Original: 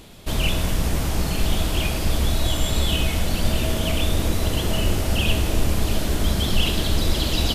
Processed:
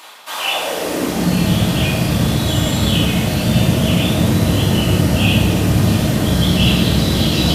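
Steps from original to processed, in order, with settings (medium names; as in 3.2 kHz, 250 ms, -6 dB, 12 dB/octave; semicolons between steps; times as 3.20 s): reverse; upward compressor, threshold -24 dBFS; reverse; high-pass sweep 1 kHz -> 130 Hz, 0.37–1.37 s; reverberation RT60 0.95 s, pre-delay 3 ms, DRR -6.5 dB; trim -1 dB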